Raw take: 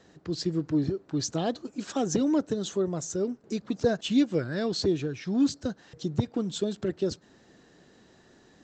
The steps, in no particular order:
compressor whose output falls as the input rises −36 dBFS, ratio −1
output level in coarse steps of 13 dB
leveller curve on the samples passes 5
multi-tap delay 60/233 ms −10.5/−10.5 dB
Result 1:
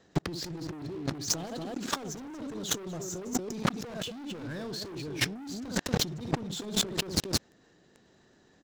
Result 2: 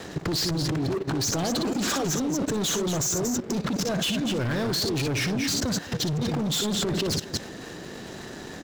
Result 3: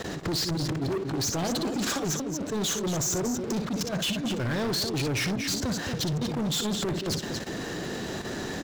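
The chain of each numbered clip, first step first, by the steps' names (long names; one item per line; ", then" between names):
multi-tap delay, then output level in coarse steps, then leveller curve on the samples, then compressor whose output falls as the input rises
compressor whose output falls as the input rises, then multi-tap delay, then leveller curve on the samples, then output level in coarse steps
compressor whose output falls as the input rises, then output level in coarse steps, then multi-tap delay, then leveller curve on the samples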